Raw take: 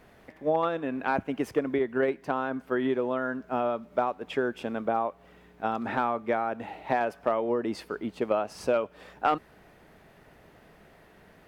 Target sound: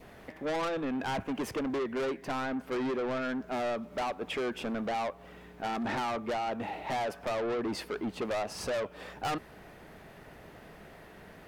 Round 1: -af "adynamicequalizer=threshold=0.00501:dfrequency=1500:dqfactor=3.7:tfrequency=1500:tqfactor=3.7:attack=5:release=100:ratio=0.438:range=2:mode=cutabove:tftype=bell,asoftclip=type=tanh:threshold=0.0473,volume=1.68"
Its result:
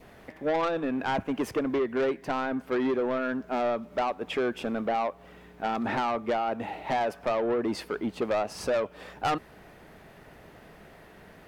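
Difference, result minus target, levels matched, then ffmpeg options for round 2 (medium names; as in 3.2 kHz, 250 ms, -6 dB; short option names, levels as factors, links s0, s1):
saturation: distortion -5 dB
-af "adynamicequalizer=threshold=0.00501:dfrequency=1500:dqfactor=3.7:tfrequency=1500:tqfactor=3.7:attack=5:release=100:ratio=0.438:range=2:mode=cutabove:tftype=bell,asoftclip=type=tanh:threshold=0.02,volume=1.68"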